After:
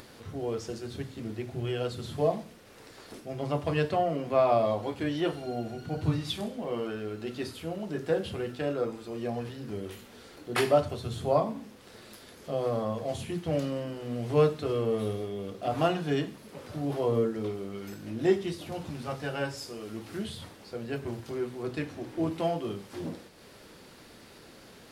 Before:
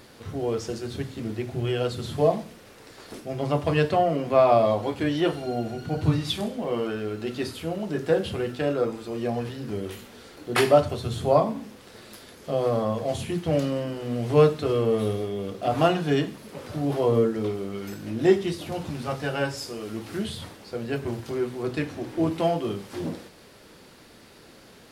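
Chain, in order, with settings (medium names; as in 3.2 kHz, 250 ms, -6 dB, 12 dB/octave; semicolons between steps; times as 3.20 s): upward compressor, threshold -39 dBFS; trim -5.5 dB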